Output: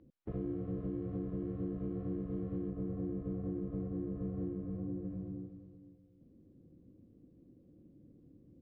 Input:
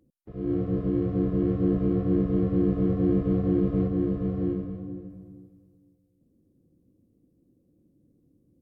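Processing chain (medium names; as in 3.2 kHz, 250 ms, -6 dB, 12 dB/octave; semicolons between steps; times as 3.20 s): 2.70–5.05 s: treble shelf 2.1 kHz -8.5 dB; compression 16:1, threshold -39 dBFS, peak gain reduction 20.5 dB; distance through air 250 m; trim +4.5 dB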